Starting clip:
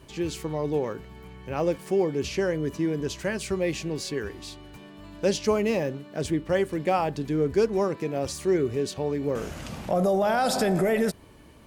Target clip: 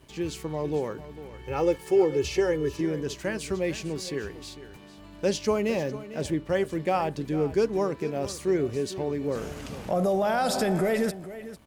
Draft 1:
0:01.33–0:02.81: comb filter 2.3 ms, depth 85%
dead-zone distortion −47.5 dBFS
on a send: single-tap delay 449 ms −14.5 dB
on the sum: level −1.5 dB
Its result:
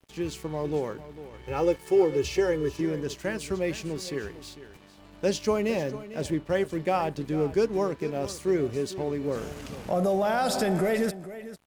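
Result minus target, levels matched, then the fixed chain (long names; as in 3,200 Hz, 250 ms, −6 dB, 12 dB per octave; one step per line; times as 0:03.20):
dead-zone distortion: distortion +10 dB
0:01.33–0:02.81: comb filter 2.3 ms, depth 85%
dead-zone distortion −58.5 dBFS
on a send: single-tap delay 449 ms −14.5 dB
on the sum: level −1.5 dB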